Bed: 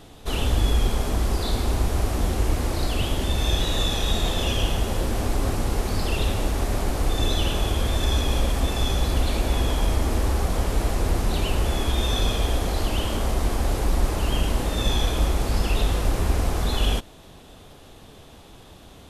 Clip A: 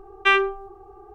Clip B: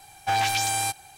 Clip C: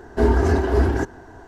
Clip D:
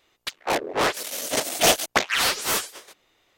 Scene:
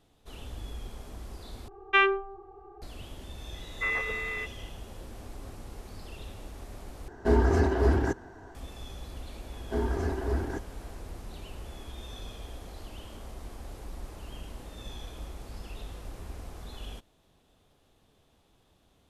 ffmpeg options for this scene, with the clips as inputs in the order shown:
ffmpeg -i bed.wav -i cue0.wav -i cue1.wav -i cue2.wav -filter_complex "[3:a]asplit=2[link_01][link_02];[0:a]volume=-19.5dB[link_03];[1:a]lowpass=4000[link_04];[2:a]lowpass=frequency=2400:width_type=q:width=0.5098,lowpass=frequency=2400:width_type=q:width=0.6013,lowpass=frequency=2400:width_type=q:width=0.9,lowpass=frequency=2400:width_type=q:width=2.563,afreqshift=-2800[link_05];[link_03]asplit=3[link_06][link_07][link_08];[link_06]atrim=end=1.684[link_09];[link_04]atrim=end=1.14,asetpts=PTS-STARTPTS,volume=-4dB[link_10];[link_07]atrim=start=2.816:end=7.084[link_11];[link_01]atrim=end=1.47,asetpts=PTS-STARTPTS,volume=-5.5dB[link_12];[link_08]atrim=start=8.546[link_13];[link_05]atrim=end=1.17,asetpts=PTS-STARTPTS,volume=-6dB,afade=type=in:duration=0.004:curve=hsin,afade=type=out:start_time=1.166:duration=0.004:curve=hsin,adelay=3540[link_14];[link_02]atrim=end=1.47,asetpts=PTS-STARTPTS,volume=-12.5dB,afade=type=in:duration=0.004:curve=hsin,afade=type=out:start_time=1.466:duration=0.004:curve=hsin,adelay=420714S[link_15];[link_09][link_10]acrossfade=duration=0.004:curve1=hsin:curve2=hsin[link_16];[link_16][link_11]acrossfade=duration=0.004:curve1=hsin:curve2=hsin[link_17];[link_17][link_12]acrossfade=duration=0.004:curve1=hsin:curve2=hsin[link_18];[link_18][link_13]acrossfade=duration=0.004:curve1=hsin:curve2=hsin[link_19];[link_19][link_14][link_15]amix=inputs=3:normalize=0" out.wav

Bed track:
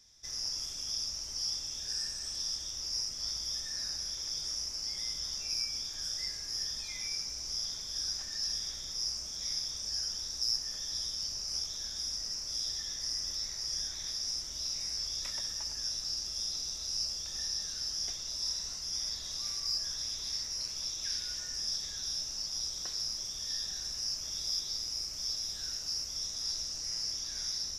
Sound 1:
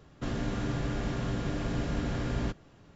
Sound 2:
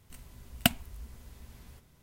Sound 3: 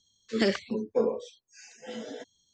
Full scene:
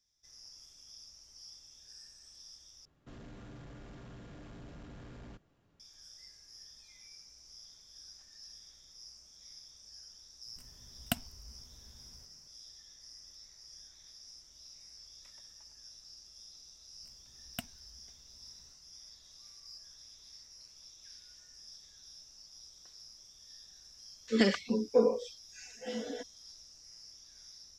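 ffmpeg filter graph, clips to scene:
ffmpeg -i bed.wav -i cue0.wav -i cue1.wav -i cue2.wav -filter_complex "[2:a]asplit=2[link_01][link_02];[0:a]volume=-17.5dB[link_03];[1:a]asoftclip=type=tanh:threshold=-30dB[link_04];[link_01]equalizer=frequency=2300:width_type=o:width=0.65:gain=-4[link_05];[3:a]aecho=1:1:4.1:0.46[link_06];[link_03]asplit=2[link_07][link_08];[link_07]atrim=end=2.854[link_09];[link_04]atrim=end=2.95,asetpts=PTS-STARTPTS,volume=-15dB[link_10];[link_08]atrim=start=5.796[link_11];[link_05]atrim=end=2.02,asetpts=PTS-STARTPTS,volume=-8.5dB,afade=type=in:duration=0.004:curve=hsin,afade=type=out:start_time=2.016:duration=0.004:curve=hsin,adelay=10460[link_12];[link_02]atrim=end=2.02,asetpts=PTS-STARTPTS,volume=-17dB,afade=type=in:duration=0.004:curve=hsin,afade=type=out:start_time=2.016:duration=0.004:curve=hsin,adelay=16930[link_13];[link_06]atrim=end=2.53,asetpts=PTS-STARTPTS,volume=-2dB,afade=type=in:duration=0.004:curve=hsin,afade=type=out:start_time=2.526:duration=0.004:curve=hsin,adelay=23990[link_14];[link_09][link_10]acrossfade=duration=0.004:curve1=hsin:curve2=hsin[link_15];[link_15][link_11]acrossfade=duration=0.004:curve1=hsin:curve2=hsin[link_16];[link_16][link_12][link_13][link_14]amix=inputs=4:normalize=0" out.wav

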